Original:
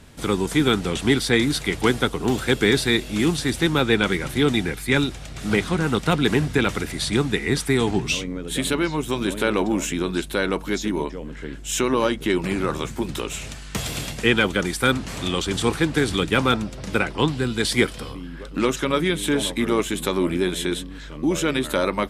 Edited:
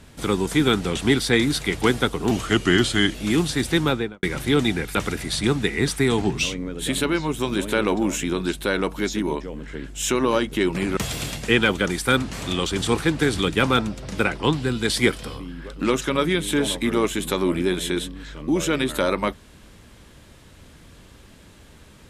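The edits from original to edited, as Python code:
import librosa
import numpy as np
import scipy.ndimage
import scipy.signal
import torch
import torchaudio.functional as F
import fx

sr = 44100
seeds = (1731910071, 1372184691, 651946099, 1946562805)

y = fx.studio_fade_out(x, sr, start_s=3.71, length_s=0.41)
y = fx.edit(y, sr, fx.speed_span(start_s=2.31, length_s=0.73, speed=0.87),
    fx.cut(start_s=4.84, length_s=1.8),
    fx.cut(start_s=12.66, length_s=1.06), tone=tone)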